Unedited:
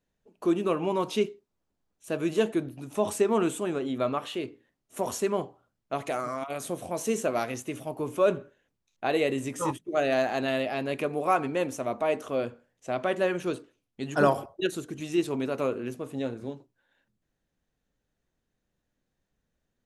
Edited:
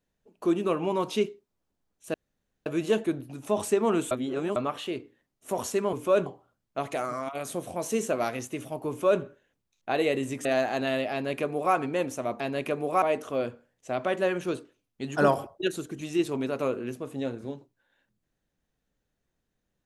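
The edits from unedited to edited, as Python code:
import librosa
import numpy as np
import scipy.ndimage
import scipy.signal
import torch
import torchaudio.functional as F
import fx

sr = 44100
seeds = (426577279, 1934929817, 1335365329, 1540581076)

y = fx.edit(x, sr, fx.insert_room_tone(at_s=2.14, length_s=0.52),
    fx.reverse_span(start_s=3.59, length_s=0.45),
    fx.duplicate(start_s=8.04, length_s=0.33, to_s=5.41),
    fx.cut(start_s=9.6, length_s=0.46),
    fx.duplicate(start_s=10.73, length_s=0.62, to_s=12.01), tone=tone)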